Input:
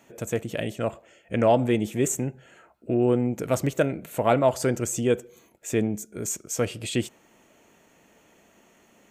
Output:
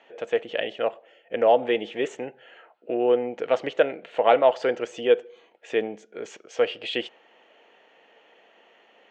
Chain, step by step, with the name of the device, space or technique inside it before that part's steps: phone earpiece (speaker cabinet 440–4100 Hz, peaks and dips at 480 Hz +8 dB, 780 Hz +6 dB, 1800 Hz +5 dB, 3000 Hz +8 dB); 0.89–1.63 bell 2300 Hz -5.5 dB 2.6 oct

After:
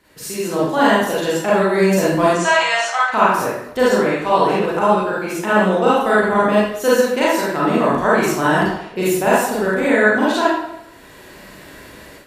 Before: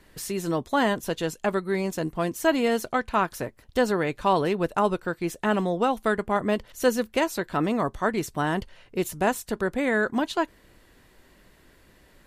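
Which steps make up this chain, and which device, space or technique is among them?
2.3–3.1 elliptic band-pass 780–7600 Hz, stop band 40 dB; far laptop microphone (reverb RT60 0.80 s, pre-delay 32 ms, DRR -8.5 dB; HPF 160 Hz 6 dB/oct; AGC gain up to 12 dB); gain -1 dB

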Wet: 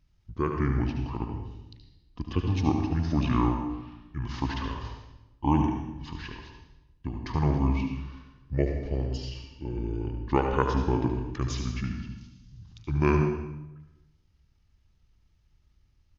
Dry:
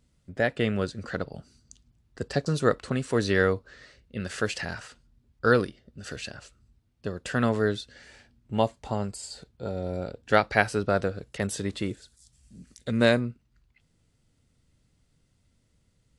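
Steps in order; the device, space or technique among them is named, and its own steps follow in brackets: monster voice (pitch shift -8 st; low shelf 140 Hz +7.5 dB; echo 73 ms -8.5 dB; reverb RT60 0.95 s, pre-delay 80 ms, DRR 5.5 dB); gain -4.5 dB

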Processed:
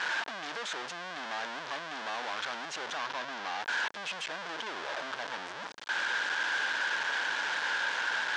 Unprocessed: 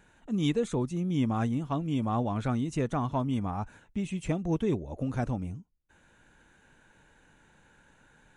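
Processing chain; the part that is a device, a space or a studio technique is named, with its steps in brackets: home computer beeper (infinite clipping; speaker cabinet 650–5700 Hz, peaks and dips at 960 Hz +4 dB, 1600 Hz +8 dB, 3300 Hz +4 dB); 2.97–3.61 bell 8500 Hz -7.5 dB 0.24 oct; gain -2 dB

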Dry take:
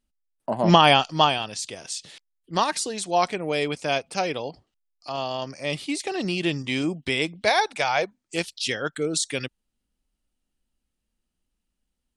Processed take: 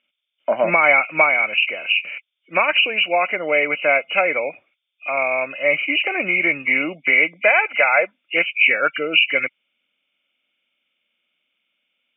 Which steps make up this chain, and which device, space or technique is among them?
hearing aid with frequency lowering (nonlinear frequency compression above 2000 Hz 4:1; compressor 4:1, threshold -21 dBFS, peak gain reduction 10 dB; speaker cabinet 350–5300 Hz, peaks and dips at 400 Hz -5 dB, 580 Hz +8 dB, 870 Hz -4 dB, 1400 Hz +9 dB, 2300 Hz +8 dB, 3400 Hz +5 dB); gain +5 dB

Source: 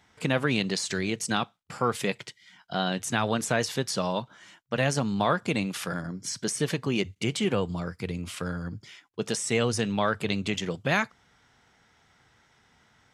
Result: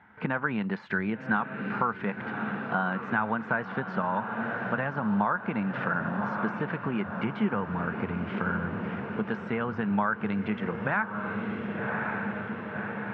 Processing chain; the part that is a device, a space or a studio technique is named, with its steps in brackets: diffused feedback echo 1.091 s, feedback 67%, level -11 dB; dynamic EQ 1100 Hz, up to +7 dB, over -42 dBFS, Q 1.5; bass amplifier (compressor 4:1, threshold -32 dBFS, peak gain reduction 14.5 dB; speaker cabinet 69–2300 Hz, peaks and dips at 210 Hz +9 dB, 890 Hz +7 dB, 1500 Hz +10 dB); gain +2 dB

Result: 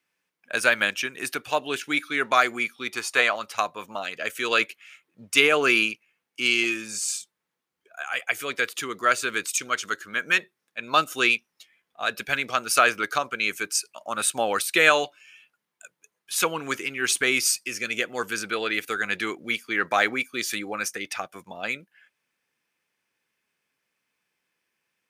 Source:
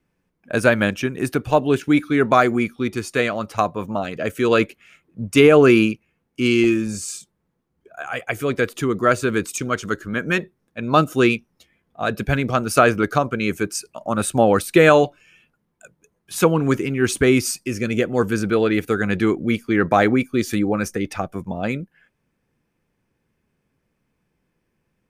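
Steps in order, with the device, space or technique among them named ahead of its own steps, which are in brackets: 2.94–3.36 bell 860 Hz +11 dB 1.2 oct; filter by subtraction (in parallel: LPF 2900 Hz 12 dB/oct + phase invert); on the sum: gain +1.5 dB

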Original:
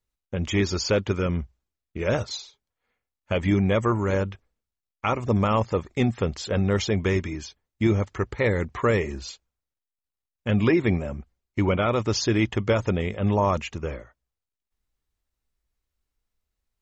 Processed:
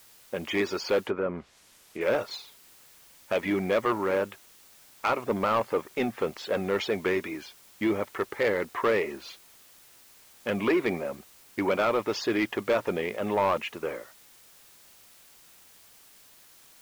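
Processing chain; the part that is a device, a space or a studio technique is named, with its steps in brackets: tape answering machine (BPF 370–2900 Hz; soft clip -20 dBFS, distortion -13 dB; wow and flutter; white noise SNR 25 dB); 1.04–2.01 treble ducked by the level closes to 1300 Hz, closed at -28.5 dBFS; gain +2.5 dB

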